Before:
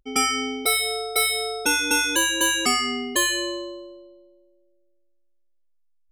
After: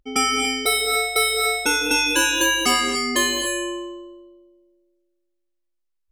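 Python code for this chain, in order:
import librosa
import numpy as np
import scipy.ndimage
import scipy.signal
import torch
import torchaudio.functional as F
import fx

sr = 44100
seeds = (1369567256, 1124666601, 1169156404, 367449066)

y = fx.high_shelf(x, sr, hz=9200.0, db=-5.0)
y = fx.rev_gated(y, sr, seeds[0], gate_ms=320, shape='rising', drr_db=3.5)
y = F.gain(torch.from_numpy(y), 1.5).numpy()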